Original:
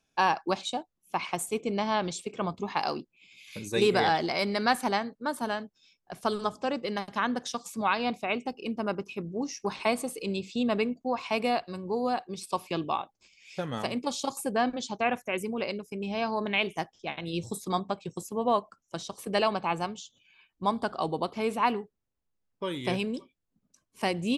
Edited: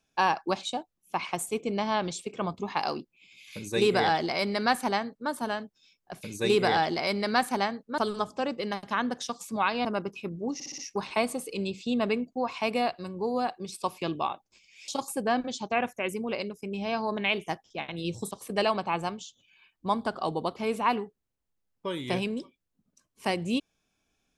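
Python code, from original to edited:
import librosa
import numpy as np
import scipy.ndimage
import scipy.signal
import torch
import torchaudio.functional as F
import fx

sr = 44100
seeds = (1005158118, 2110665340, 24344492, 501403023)

y = fx.edit(x, sr, fx.duplicate(start_s=3.55, length_s=1.75, to_s=6.23),
    fx.cut(start_s=8.1, length_s=0.68),
    fx.stutter(start_s=9.47, slice_s=0.06, count=5),
    fx.cut(start_s=13.57, length_s=0.6),
    fx.cut(start_s=17.6, length_s=1.48), tone=tone)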